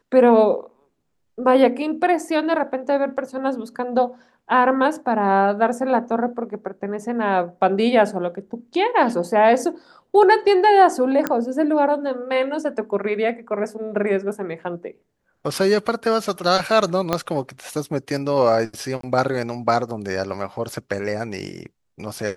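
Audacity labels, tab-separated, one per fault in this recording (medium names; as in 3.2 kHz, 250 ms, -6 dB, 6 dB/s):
11.270000	11.270000	pop -8 dBFS
17.130000	17.130000	pop -6 dBFS
19.010000	19.030000	dropout 23 ms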